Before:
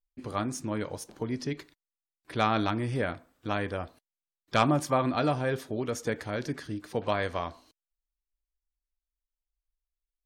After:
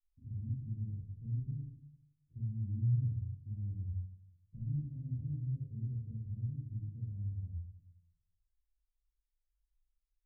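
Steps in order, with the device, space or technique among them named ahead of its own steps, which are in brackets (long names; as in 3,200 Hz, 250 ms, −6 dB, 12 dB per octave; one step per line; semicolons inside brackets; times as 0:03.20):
club heard from the street (brickwall limiter −20.5 dBFS, peak gain reduction 9 dB; low-pass filter 130 Hz 24 dB per octave; convolution reverb RT60 0.80 s, pre-delay 21 ms, DRR −7 dB)
level −5 dB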